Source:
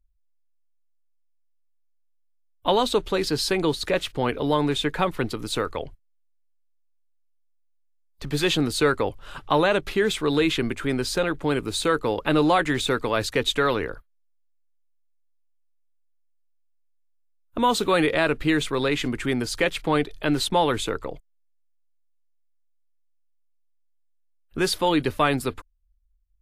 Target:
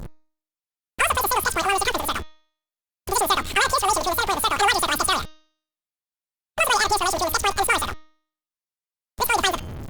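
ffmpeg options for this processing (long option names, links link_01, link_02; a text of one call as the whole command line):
ffmpeg -i in.wav -af "aeval=exprs='val(0)+0.5*0.0422*sgn(val(0))':channel_layout=same,asetrate=117747,aresample=44100,bandreject=frequency=311.1:width_type=h:width=4,bandreject=frequency=622.2:width_type=h:width=4,bandreject=frequency=933.3:width_type=h:width=4,bandreject=frequency=1244.4:width_type=h:width=4,bandreject=frequency=1555.5:width_type=h:width=4,bandreject=frequency=1866.6:width_type=h:width=4,bandreject=frequency=2177.7:width_type=h:width=4,bandreject=frequency=2488.8:width_type=h:width=4,bandreject=frequency=2799.9:width_type=h:width=4,bandreject=frequency=3111:width_type=h:width=4,bandreject=frequency=3422.1:width_type=h:width=4,bandreject=frequency=3733.2:width_type=h:width=4,bandreject=frequency=4044.3:width_type=h:width=4,bandreject=frequency=4355.4:width_type=h:width=4,bandreject=frequency=4666.5:width_type=h:width=4,bandreject=frequency=4977.6:width_type=h:width=4,bandreject=frequency=5288.7:width_type=h:width=4,bandreject=frequency=5599.8:width_type=h:width=4,bandreject=frequency=5910.9:width_type=h:width=4,bandreject=frequency=6222:width_type=h:width=4,bandreject=frequency=6533.1:width_type=h:width=4" -ar 48000 -c:a libopus -b:a 48k out.opus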